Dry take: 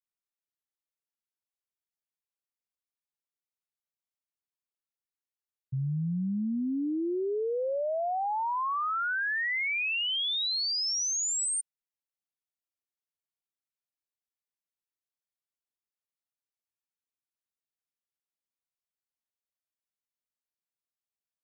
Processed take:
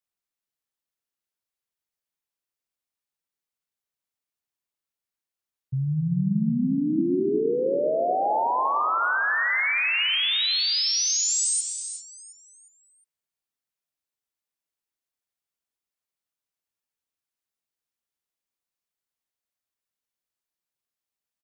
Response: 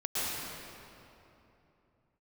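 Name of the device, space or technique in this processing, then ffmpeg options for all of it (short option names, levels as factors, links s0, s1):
keyed gated reverb: -filter_complex "[0:a]aecho=1:1:358|716|1074|1432:0.266|0.106|0.0426|0.017,asplit=3[s0][s1][s2];[1:a]atrim=start_sample=2205[s3];[s1][s3]afir=irnorm=-1:irlink=0[s4];[s2]apad=whole_len=1008270[s5];[s4][s5]sidechaingate=range=0.0224:threshold=0.00631:ratio=16:detection=peak,volume=0.251[s6];[s0][s6]amix=inputs=2:normalize=0,volume=1.5"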